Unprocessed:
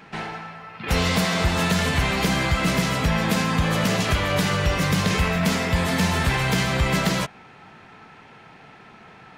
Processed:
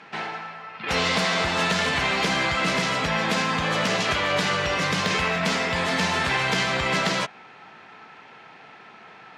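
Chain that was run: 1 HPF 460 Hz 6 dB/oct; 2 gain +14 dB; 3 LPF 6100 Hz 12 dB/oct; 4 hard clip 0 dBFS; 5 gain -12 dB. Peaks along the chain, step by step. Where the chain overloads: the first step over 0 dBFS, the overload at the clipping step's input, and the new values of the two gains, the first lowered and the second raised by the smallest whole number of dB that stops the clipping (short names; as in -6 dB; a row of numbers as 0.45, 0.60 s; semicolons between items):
-10.5, +3.5, +3.0, 0.0, -12.0 dBFS; step 2, 3.0 dB; step 2 +11 dB, step 5 -9 dB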